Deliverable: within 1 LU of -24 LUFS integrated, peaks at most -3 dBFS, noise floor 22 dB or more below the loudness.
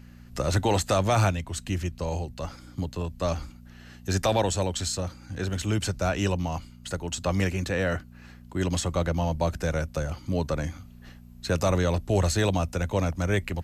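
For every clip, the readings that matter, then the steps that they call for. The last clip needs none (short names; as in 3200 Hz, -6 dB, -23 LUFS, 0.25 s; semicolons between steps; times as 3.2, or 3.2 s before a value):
hum 60 Hz; harmonics up to 240 Hz; hum level -46 dBFS; loudness -28.0 LUFS; peak -12.5 dBFS; loudness target -24.0 LUFS
-> de-hum 60 Hz, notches 4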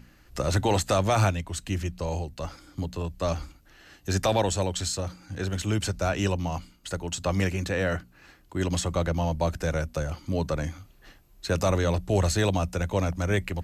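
hum none; loudness -28.0 LUFS; peak -12.0 dBFS; loudness target -24.0 LUFS
-> gain +4 dB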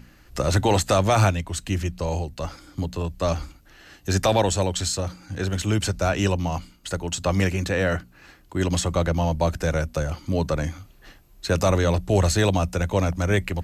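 loudness -24.0 LUFS; peak -8.0 dBFS; noise floor -53 dBFS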